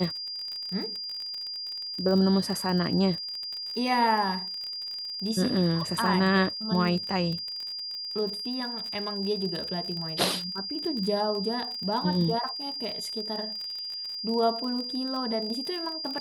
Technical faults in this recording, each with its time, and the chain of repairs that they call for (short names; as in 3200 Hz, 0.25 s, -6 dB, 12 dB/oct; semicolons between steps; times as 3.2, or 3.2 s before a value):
crackle 37/s -32 dBFS
tone 4800 Hz -33 dBFS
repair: de-click; notch 4800 Hz, Q 30